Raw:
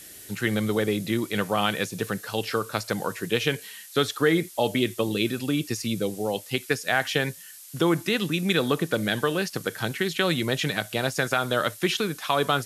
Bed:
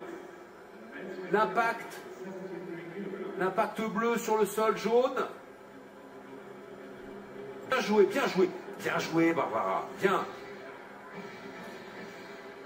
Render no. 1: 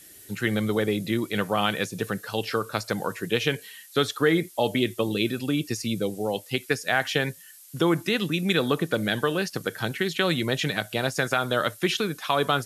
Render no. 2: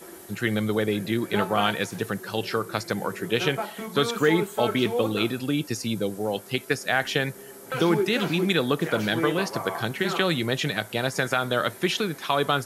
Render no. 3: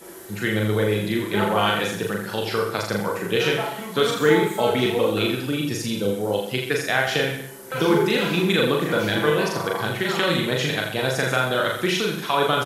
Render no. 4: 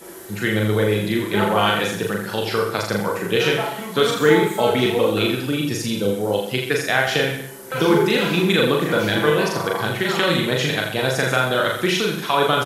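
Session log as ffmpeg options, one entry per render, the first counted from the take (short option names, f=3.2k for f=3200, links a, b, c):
-af "afftdn=nr=6:nf=-45"
-filter_complex "[1:a]volume=-2.5dB[a];[0:a][a]amix=inputs=2:normalize=0"
-filter_complex "[0:a]asplit=2[a][b];[b]adelay=38,volume=-5.5dB[c];[a][c]amix=inputs=2:normalize=0,asplit=2[d][e];[e]aecho=0:1:40|84|132.4|185.6|244.2:0.631|0.398|0.251|0.158|0.1[f];[d][f]amix=inputs=2:normalize=0"
-af "volume=2.5dB"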